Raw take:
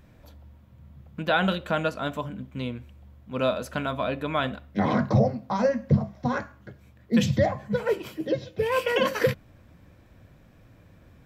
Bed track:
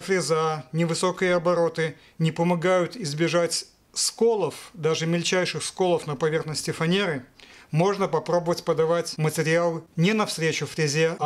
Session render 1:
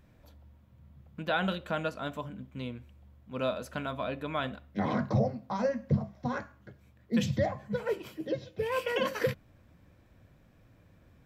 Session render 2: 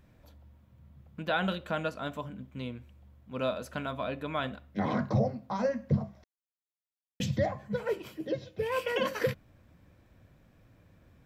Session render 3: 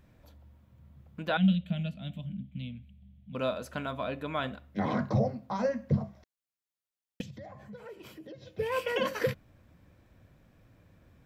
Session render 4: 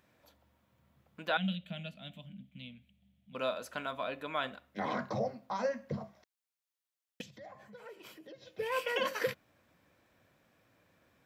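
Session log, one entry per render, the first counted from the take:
gain -6.5 dB
6.24–7.2 mute
1.37–3.35 EQ curve 120 Hz 0 dB, 180 Hz +12 dB, 390 Hz -24 dB, 660 Hz -10 dB, 1000 Hz -25 dB, 1500 Hz -19 dB, 2200 Hz -6 dB, 3300 Hz +1 dB, 5400 Hz -18 dB, 11000 Hz -11 dB; 7.21–8.47 compressor 5:1, threshold -44 dBFS
HPF 620 Hz 6 dB/oct

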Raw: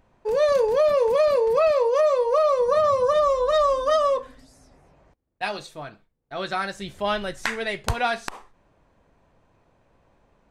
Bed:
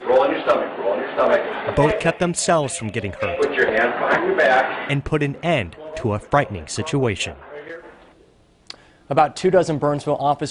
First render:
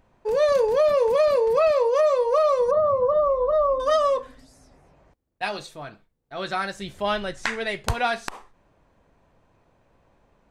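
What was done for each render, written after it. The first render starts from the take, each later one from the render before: 2.71–3.8 polynomial smoothing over 65 samples; 5.48–6.53 transient shaper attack -3 dB, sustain +1 dB; 7.21–7.65 LPF 8800 Hz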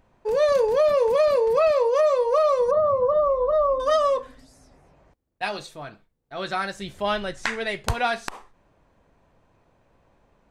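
nothing audible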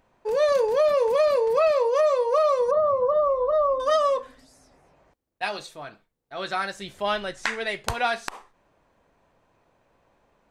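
low shelf 230 Hz -8.5 dB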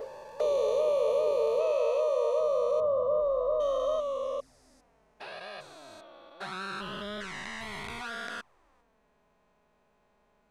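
stepped spectrum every 0.4 s; envelope flanger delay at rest 5 ms, full sweep at -27 dBFS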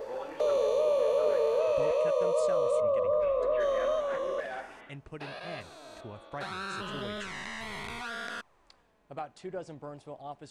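add bed -23.5 dB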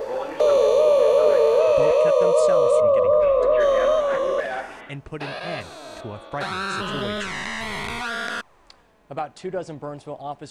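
gain +10 dB

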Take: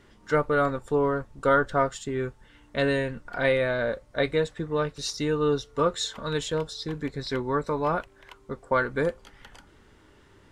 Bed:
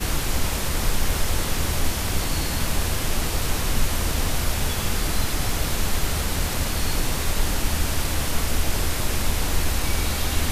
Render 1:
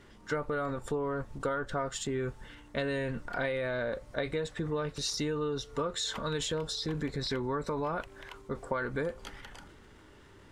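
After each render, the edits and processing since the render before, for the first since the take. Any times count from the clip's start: transient shaper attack -1 dB, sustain +6 dB; compressor 12:1, threshold -29 dBFS, peak gain reduction 13.5 dB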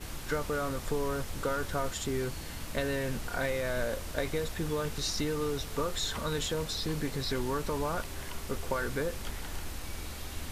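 add bed -16.5 dB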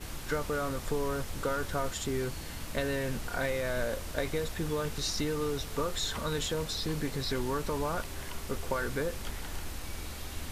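nothing audible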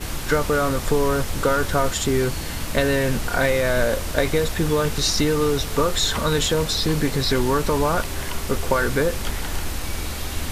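gain +12 dB

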